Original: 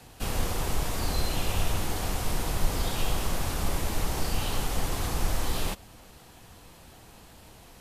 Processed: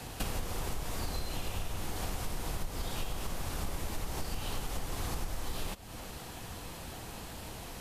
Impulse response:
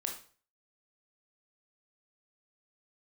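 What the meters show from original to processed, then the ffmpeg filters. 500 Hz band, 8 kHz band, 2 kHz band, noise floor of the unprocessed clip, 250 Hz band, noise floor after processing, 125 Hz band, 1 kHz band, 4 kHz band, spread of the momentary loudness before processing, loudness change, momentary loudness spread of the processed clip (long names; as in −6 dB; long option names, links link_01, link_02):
−7.0 dB, −7.0 dB, −7.0 dB, −52 dBFS, −7.0 dB, −45 dBFS, −7.5 dB, −7.0 dB, −7.0 dB, 21 LU, −8.5 dB, 6 LU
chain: -af "acompressor=threshold=-39dB:ratio=8,volume=7dB"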